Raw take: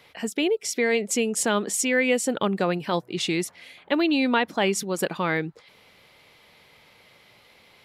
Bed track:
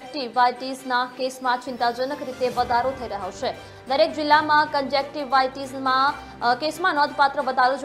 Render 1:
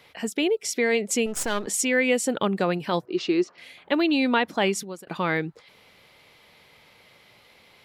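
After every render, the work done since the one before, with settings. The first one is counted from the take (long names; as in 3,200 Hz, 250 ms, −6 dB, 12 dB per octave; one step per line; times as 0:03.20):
0:01.26–0:01.67: gain on one half-wave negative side −12 dB
0:03.05–0:03.58: loudspeaker in its box 260–5,000 Hz, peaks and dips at 360 Hz +8 dB, 830 Hz −4 dB, 1,200 Hz +5 dB, 2,100 Hz −8 dB, 3,500 Hz −9 dB
0:04.67–0:05.07: fade out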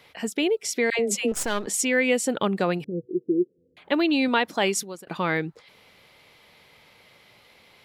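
0:00.90–0:01.32: all-pass dispersion lows, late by 93 ms, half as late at 820 Hz
0:02.84–0:03.77: Chebyshev low-pass with heavy ripple 500 Hz, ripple 3 dB
0:04.28–0:04.95: bass and treble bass −4 dB, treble +5 dB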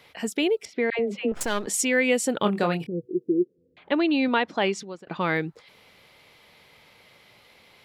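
0:00.65–0:01.41: high-frequency loss of the air 370 metres
0:02.42–0:02.89: double-tracking delay 24 ms −6.5 dB
0:03.42–0:05.21: high-frequency loss of the air 140 metres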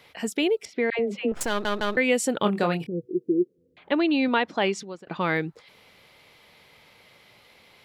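0:01.49: stutter in place 0.16 s, 3 plays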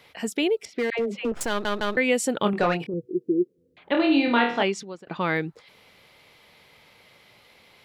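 0:00.71–0:01.44: hard clipping −20 dBFS
0:02.53–0:02.94: mid-hump overdrive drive 14 dB, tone 1,900 Hz, clips at −12 dBFS
0:03.92–0:04.63: flutter between parallel walls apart 4.3 metres, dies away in 0.48 s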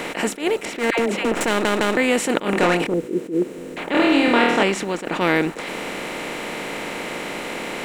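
compressor on every frequency bin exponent 0.4
level that may rise only so fast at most 180 dB per second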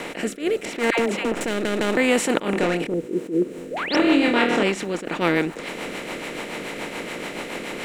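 0:03.71–0:03.96: sound drawn into the spectrogram rise 420–6,000 Hz −25 dBFS
rotating-speaker cabinet horn 0.8 Hz, later 7 Hz, at 0:03.06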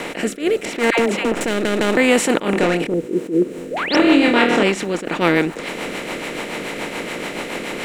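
level +4.5 dB
brickwall limiter −1 dBFS, peak gain reduction 3 dB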